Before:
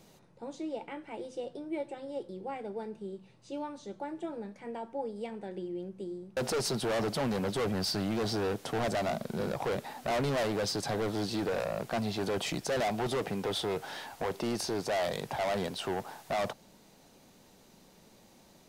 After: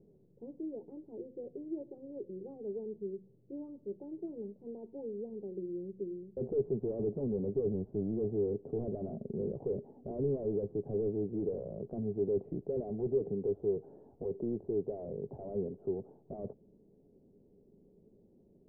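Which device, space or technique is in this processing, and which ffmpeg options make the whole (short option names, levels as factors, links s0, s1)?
under water: -af "lowpass=f=460:w=0.5412,lowpass=f=460:w=1.3066,equalizer=f=410:t=o:w=0.21:g=10,volume=0.708"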